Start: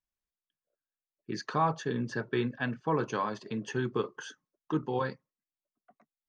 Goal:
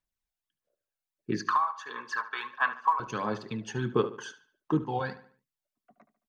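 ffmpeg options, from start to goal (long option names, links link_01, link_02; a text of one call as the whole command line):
ffmpeg -i in.wav -filter_complex "[0:a]asettb=1/sr,asplit=3[link_01][link_02][link_03];[link_01]atrim=end=1.404[link_04];[link_02]atrim=start=1.4:end=3,asetpts=PTS-STARTPTS,afade=type=in:duration=0.004:curve=qsin,afade=type=out:start_time=1.596:duration=0.004:curve=qsin,highpass=frequency=1100:width_type=q:width=10[link_05];[link_03]atrim=start=2.996[link_06];[link_04][link_05]acrossfade=duration=0.004:curve1=hsin:curve2=qsin[link_07];[link_07][link_06]acrossfade=duration=0.004:curve1=qsin:curve2=hsin,acompressor=threshold=-24dB:ratio=6,aphaser=in_gain=1:out_gain=1:delay=1.4:decay=0.51:speed=1.5:type=sinusoidal,asplit=2[link_08][link_09];[link_09]adelay=73,lowpass=frequency=4700:poles=1,volume=-14dB,asplit=2[link_10][link_11];[link_11]adelay=73,lowpass=frequency=4700:poles=1,volume=0.41,asplit=2[link_12][link_13];[link_13]adelay=73,lowpass=frequency=4700:poles=1,volume=0.41,asplit=2[link_14][link_15];[link_15]adelay=73,lowpass=frequency=4700:poles=1,volume=0.41[link_16];[link_10][link_12][link_14][link_16]amix=inputs=4:normalize=0[link_17];[link_08][link_17]amix=inputs=2:normalize=0" out.wav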